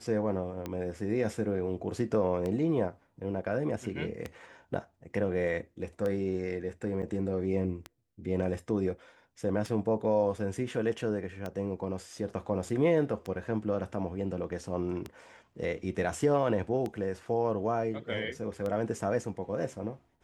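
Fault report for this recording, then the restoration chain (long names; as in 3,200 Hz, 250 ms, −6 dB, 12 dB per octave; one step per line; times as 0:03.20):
scratch tick 33 1/3 rpm −22 dBFS
0:07.02–0:07.03: drop-out 7.5 ms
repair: click removal
repair the gap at 0:07.02, 7.5 ms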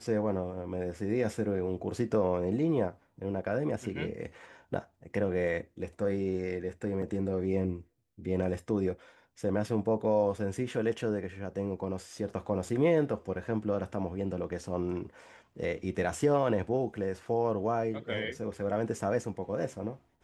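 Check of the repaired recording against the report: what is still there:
none of them is left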